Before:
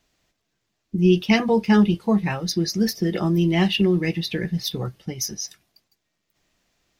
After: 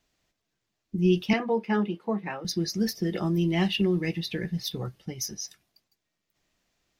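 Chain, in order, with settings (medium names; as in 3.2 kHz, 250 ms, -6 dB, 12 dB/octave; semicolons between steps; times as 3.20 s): 1.33–2.45 s: three-band isolator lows -24 dB, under 210 Hz, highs -14 dB, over 2.7 kHz; trim -5.5 dB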